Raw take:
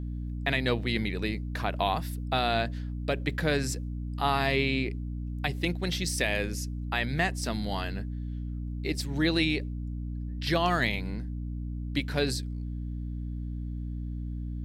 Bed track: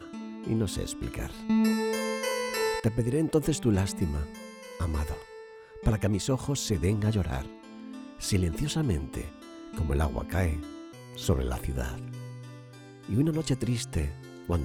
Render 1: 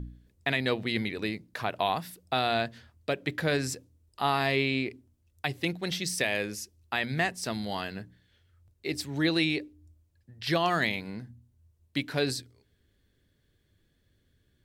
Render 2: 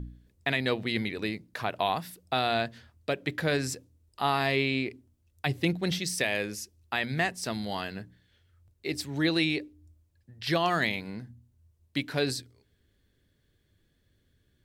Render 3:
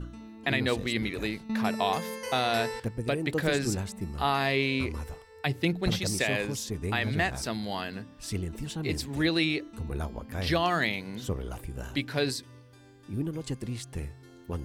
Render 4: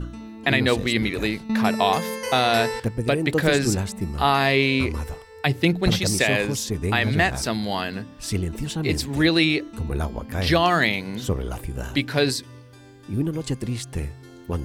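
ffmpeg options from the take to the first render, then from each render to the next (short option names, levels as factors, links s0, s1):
-af "bandreject=f=60:t=h:w=4,bandreject=f=120:t=h:w=4,bandreject=f=180:t=h:w=4,bandreject=f=240:t=h:w=4,bandreject=f=300:t=h:w=4"
-filter_complex "[0:a]asettb=1/sr,asplit=3[s0][s1][s2];[s0]atrim=end=5.464[s3];[s1]atrim=start=5.46:end=5.99,asetpts=PTS-STARTPTS,afade=t=in:d=0.004:c=qsin,afade=t=out:st=0.526:d=0.004:c=qsin,lowshelf=f=360:g=7[s4];[s2]atrim=start=5.986[s5];[s3][s4]acrossfade=d=0.004:c1=hsin:c2=qsin[s6];[s6][s5]acrossfade=d=0.004:c1=qsin:c2=hsin"
-filter_complex "[1:a]volume=0.473[s0];[0:a][s0]amix=inputs=2:normalize=0"
-af "volume=2.37"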